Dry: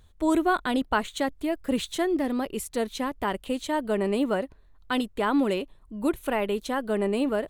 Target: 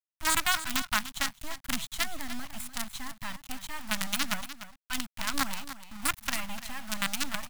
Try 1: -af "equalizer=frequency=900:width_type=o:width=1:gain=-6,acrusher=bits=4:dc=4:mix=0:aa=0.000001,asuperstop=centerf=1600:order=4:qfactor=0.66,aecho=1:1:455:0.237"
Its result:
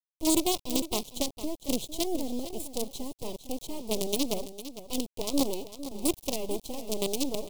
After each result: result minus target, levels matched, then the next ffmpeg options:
2,000 Hz band −16.0 dB; echo 158 ms late
-af "equalizer=frequency=900:width_type=o:width=1:gain=-6,acrusher=bits=4:dc=4:mix=0:aa=0.000001,asuperstop=centerf=420:order=4:qfactor=0.66,aecho=1:1:455:0.237"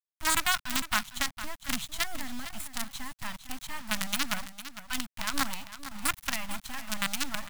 echo 158 ms late
-af "equalizer=frequency=900:width_type=o:width=1:gain=-6,acrusher=bits=4:dc=4:mix=0:aa=0.000001,asuperstop=centerf=420:order=4:qfactor=0.66,aecho=1:1:297:0.237"

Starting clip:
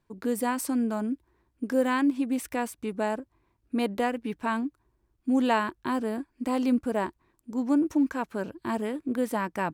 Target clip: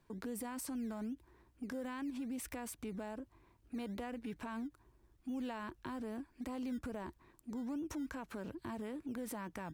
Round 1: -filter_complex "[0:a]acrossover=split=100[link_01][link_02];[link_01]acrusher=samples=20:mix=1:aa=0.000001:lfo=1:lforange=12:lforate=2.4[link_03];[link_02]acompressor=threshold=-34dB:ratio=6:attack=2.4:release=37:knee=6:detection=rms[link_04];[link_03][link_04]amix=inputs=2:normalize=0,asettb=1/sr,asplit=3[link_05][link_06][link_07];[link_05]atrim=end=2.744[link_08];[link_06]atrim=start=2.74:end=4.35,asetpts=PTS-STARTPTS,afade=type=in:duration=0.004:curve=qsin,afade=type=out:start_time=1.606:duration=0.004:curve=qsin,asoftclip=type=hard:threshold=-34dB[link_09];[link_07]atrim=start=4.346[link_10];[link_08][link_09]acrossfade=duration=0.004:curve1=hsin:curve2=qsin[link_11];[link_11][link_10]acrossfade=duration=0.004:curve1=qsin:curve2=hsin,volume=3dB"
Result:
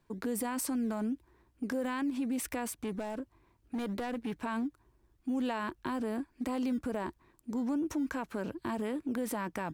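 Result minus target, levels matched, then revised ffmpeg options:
downward compressor: peak gain reduction −9 dB
-filter_complex "[0:a]acrossover=split=100[link_01][link_02];[link_01]acrusher=samples=20:mix=1:aa=0.000001:lfo=1:lforange=12:lforate=2.4[link_03];[link_02]acompressor=threshold=-45dB:ratio=6:attack=2.4:release=37:knee=6:detection=rms[link_04];[link_03][link_04]amix=inputs=2:normalize=0,asettb=1/sr,asplit=3[link_05][link_06][link_07];[link_05]atrim=end=2.744[link_08];[link_06]atrim=start=2.74:end=4.35,asetpts=PTS-STARTPTS,afade=type=in:duration=0.004:curve=qsin,afade=type=out:start_time=1.606:duration=0.004:curve=qsin,asoftclip=type=hard:threshold=-34dB[link_09];[link_07]atrim=start=4.346[link_10];[link_08][link_09]acrossfade=duration=0.004:curve1=hsin:curve2=qsin[link_11];[link_11][link_10]acrossfade=duration=0.004:curve1=qsin:curve2=hsin,volume=3dB"

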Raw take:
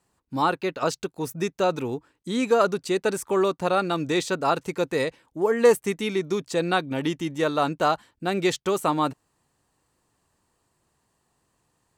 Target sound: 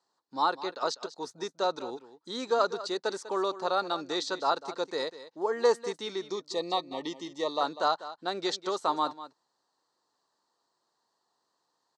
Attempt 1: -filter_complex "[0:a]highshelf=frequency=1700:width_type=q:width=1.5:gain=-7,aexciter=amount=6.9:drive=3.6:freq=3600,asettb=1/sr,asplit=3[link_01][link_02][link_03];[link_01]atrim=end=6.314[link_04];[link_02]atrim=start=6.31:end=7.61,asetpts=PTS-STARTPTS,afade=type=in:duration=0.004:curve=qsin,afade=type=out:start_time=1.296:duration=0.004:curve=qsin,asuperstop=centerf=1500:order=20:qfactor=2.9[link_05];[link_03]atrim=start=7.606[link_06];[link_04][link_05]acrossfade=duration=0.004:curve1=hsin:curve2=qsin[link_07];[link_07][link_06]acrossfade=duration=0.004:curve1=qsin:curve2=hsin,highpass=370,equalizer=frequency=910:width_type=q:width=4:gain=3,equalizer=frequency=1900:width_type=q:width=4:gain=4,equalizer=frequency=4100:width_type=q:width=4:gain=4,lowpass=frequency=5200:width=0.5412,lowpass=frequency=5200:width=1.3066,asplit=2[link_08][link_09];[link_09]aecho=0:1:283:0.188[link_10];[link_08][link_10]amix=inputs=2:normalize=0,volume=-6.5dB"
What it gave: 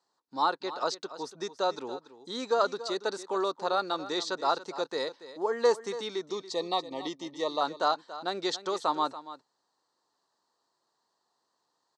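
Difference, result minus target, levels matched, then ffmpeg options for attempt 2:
echo 86 ms late
-filter_complex "[0:a]highshelf=frequency=1700:width_type=q:width=1.5:gain=-7,aexciter=amount=6.9:drive=3.6:freq=3600,asettb=1/sr,asplit=3[link_01][link_02][link_03];[link_01]atrim=end=6.314[link_04];[link_02]atrim=start=6.31:end=7.61,asetpts=PTS-STARTPTS,afade=type=in:duration=0.004:curve=qsin,afade=type=out:start_time=1.296:duration=0.004:curve=qsin,asuperstop=centerf=1500:order=20:qfactor=2.9[link_05];[link_03]atrim=start=7.606[link_06];[link_04][link_05]acrossfade=duration=0.004:curve1=hsin:curve2=qsin[link_07];[link_07][link_06]acrossfade=duration=0.004:curve1=qsin:curve2=hsin,highpass=370,equalizer=frequency=910:width_type=q:width=4:gain=3,equalizer=frequency=1900:width_type=q:width=4:gain=4,equalizer=frequency=4100:width_type=q:width=4:gain=4,lowpass=frequency=5200:width=0.5412,lowpass=frequency=5200:width=1.3066,asplit=2[link_08][link_09];[link_09]aecho=0:1:197:0.188[link_10];[link_08][link_10]amix=inputs=2:normalize=0,volume=-6.5dB"

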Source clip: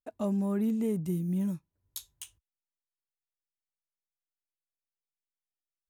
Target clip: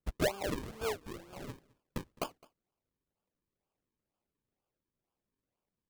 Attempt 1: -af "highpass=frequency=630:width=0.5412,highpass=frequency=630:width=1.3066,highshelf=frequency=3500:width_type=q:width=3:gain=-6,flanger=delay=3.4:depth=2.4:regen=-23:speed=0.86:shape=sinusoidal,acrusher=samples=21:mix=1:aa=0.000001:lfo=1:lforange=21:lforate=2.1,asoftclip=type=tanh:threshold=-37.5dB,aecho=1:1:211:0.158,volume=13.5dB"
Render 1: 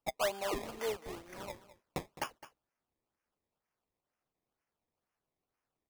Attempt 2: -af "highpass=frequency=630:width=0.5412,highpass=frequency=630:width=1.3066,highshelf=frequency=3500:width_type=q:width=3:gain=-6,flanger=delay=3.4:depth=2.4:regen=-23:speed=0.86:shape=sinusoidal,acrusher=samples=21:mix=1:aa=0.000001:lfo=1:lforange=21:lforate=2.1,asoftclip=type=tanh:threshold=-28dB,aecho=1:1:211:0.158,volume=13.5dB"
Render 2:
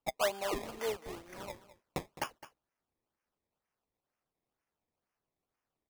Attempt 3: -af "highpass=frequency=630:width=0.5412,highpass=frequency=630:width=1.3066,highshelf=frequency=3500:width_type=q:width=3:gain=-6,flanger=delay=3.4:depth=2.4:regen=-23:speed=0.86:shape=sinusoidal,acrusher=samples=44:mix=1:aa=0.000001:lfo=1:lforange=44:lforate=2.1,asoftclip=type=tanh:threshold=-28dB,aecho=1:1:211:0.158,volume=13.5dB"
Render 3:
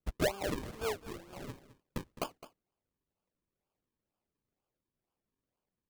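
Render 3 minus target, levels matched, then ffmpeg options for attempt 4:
echo-to-direct +9 dB
-af "highpass=frequency=630:width=0.5412,highpass=frequency=630:width=1.3066,highshelf=frequency=3500:width_type=q:width=3:gain=-6,flanger=delay=3.4:depth=2.4:regen=-23:speed=0.86:shape=sinusoidal,acrusher=samples=44:mix=1:aa=0.000001:lfo=1:lforange=44:lforate=2.1,asoftclip=type=tanh:threshold=-28dB,aecho=1:1:211:0.0562,volume=13.5dB"

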